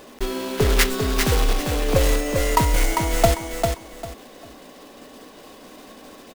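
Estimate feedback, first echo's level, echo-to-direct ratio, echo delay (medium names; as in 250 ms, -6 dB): 24%, -5.0 dB, -4.5 dB, 398 ms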